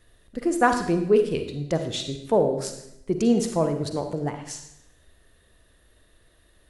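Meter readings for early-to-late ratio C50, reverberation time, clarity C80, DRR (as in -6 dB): 7.5 dB, 0.85 s, 10.5 dB, 6.5 dB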